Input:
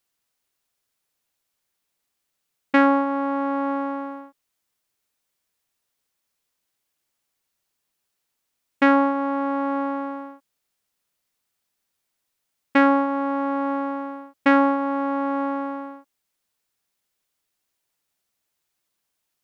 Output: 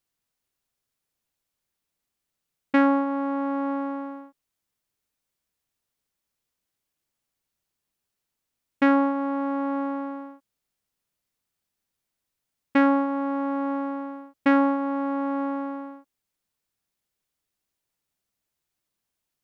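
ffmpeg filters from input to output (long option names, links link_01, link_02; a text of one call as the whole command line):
ffmpeg -i in.wav -af "lowshelf=frequency=300:gain=8,volume=-5.5dB" out.wav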